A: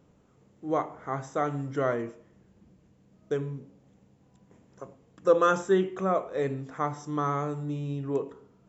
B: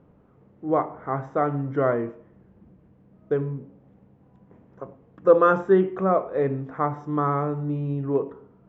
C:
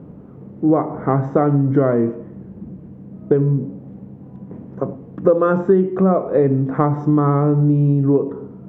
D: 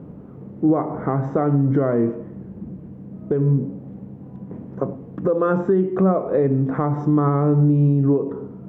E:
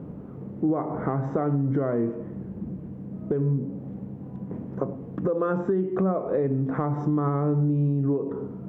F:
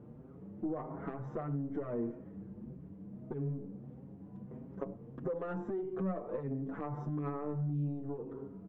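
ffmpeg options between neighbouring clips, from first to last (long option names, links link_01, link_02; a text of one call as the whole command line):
ffmpeg -i in.wav -af "lowpass=1600,volume=5.5dB" out.wav
ffmpeg -i in.wav -af "equalizer=frequency=200:width=0.39:gain=13.5,acompressor=threshold=-19dB:ratio=5,volume=6.5dB" out.wav
ffmpeg -i in.wav -af "alimiter=limit=-9.5dB:level=0:latency=1:release=178" out.wav
ffmpeg -i in.wav -af "acompressor=threshold=-26dB:ratio=2" out.wav
ffmpeg -i in.wav -filter_complex "[0:a]aeval=exprs='(tanh(6.31*val(0)+0.35)-tanh(0.35))/6.31':channel_layout=same,asplit=2[link_01][link_02];[link_02]adelay=6.4,afreqshift=1.6[link_03];[link_01][link_03]amix=inputs=2:normalize=1,volume=-8dB" out.wav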